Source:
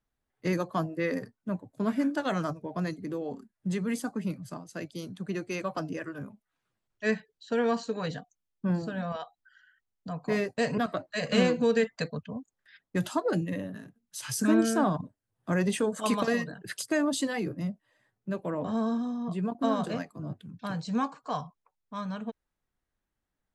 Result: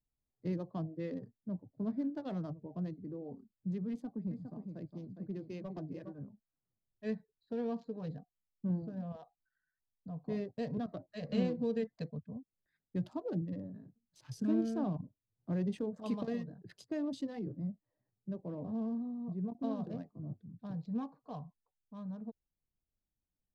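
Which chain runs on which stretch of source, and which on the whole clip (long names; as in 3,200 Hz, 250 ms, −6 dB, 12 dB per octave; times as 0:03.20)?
0:03.90–0:06.15: notch filter 1,300 Hz, Q 11 + single-tap delay 410 ms −7 dB + gain into a clipping stage and back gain 25 dB
whole clip: adaptive Wiener filter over 15 samples; drawn EQ curve 140 Hz 0 dB, 790 Hz −9 dB, 1,400 Hz −18 dB, 3,300 Hz −11 dB, 4,900 Hz −10 dB, 7,800 Hz −22 dB; level −4.5 dB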